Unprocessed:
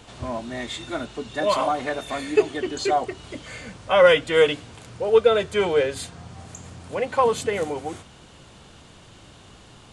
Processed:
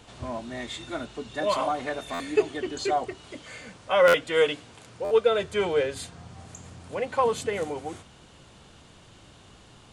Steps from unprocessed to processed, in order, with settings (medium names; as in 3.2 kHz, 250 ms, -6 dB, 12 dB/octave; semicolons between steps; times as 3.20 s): 3.15–5.39 s: bass shelf 130 Hz -9.5 dB; buffer glitch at 2.13/4.07/5.04 s, samples 512, times 5; trim -4 dB